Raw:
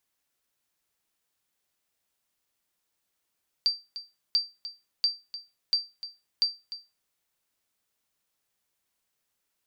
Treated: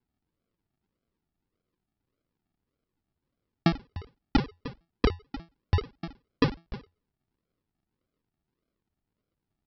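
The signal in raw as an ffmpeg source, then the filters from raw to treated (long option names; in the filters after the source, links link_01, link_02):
-f lavfi -i "aevalsrc='0.158*(sin(2*PI*4680*mod(t,0.69))*exp(-6.91*mod(t,0.69)/0.25)+0.2*sin(2*PI*4680*max(mod(t,0.69)-0.3,0))*exp(-6.91*max(mod(t,0.69)-0.3,0)/0.25))':duration=3.45:sample_rate=44100"
-af "aecho=1:1:1.9:0.88,aresample=11025,acrusher=samples=17:mix=1:aa=0.000001:lfo=1:lforange=10.2:lforate=1.7,aresample=44100"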